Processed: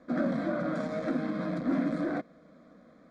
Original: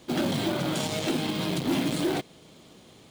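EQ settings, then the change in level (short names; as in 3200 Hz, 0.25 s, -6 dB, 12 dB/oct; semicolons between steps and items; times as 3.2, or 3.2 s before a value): LPF 1900 Hz 12 dB/oct; low shelf 86 Hz -8 dB; fixed phaser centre 580 Hz, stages 8; +1.0 dB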